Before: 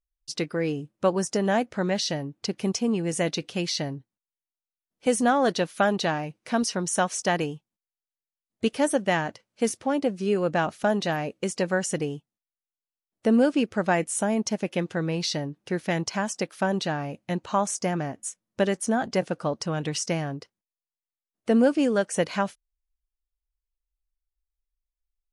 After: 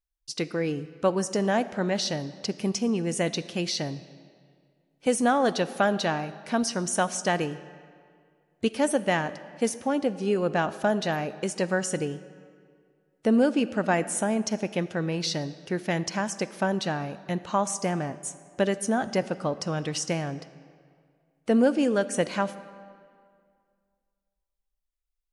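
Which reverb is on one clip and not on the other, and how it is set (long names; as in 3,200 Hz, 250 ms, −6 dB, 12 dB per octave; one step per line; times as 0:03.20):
comb and all-pass reverb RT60 2.1 s, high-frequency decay 0.75×, pre-delay 5 ms, DRR 14.5 dB
level −1 dB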